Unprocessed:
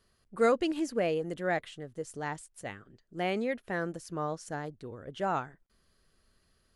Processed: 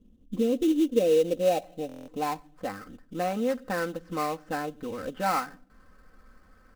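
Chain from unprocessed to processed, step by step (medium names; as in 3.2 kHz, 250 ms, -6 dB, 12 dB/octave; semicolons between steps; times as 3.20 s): on a send at -21 dB: reverberation RT60 0.45 s, pre-delay 4 ms; on the sum: compression 2:1, threshold -48 dBFS, peak gain reduction 15 dB; low-pass sweep 270 Hz -> 1.4 kHz, 0.16–2.80 s; in parallel at -4 dB: sample-rate reducer 3.3 kHz, jitter 20%; on the sum: comb 3.9 ms, depth 80%; buffer glitch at 1.87 s, samples 1024, times 8; trim +6.5 dB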